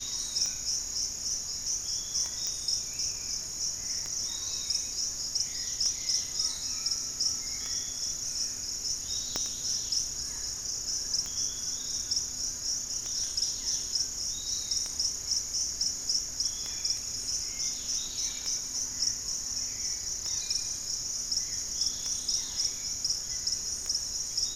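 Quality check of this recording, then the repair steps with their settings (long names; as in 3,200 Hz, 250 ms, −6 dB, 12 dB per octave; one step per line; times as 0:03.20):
scratch tick 33 1/3 rpm −21 dBFS
0:02.47: click −18 dBFS
0:09.36: click −14 dBFS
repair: click removal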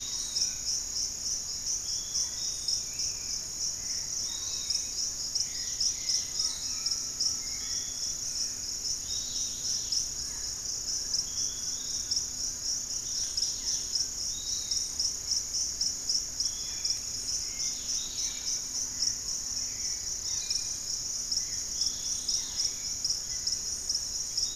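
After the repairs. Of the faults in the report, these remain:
0:09.36: click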